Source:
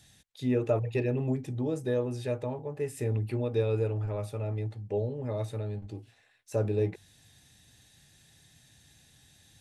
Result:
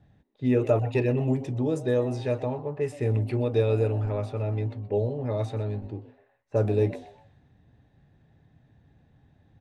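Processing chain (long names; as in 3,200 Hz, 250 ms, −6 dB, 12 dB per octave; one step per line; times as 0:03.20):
low-pass that shuts in the quiet parts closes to 850 Hz, open at −25.5 dBFS
echo with shifted repeats 125 ms, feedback 33%, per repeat +150 Hz, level −18 dB
level +4.5 dB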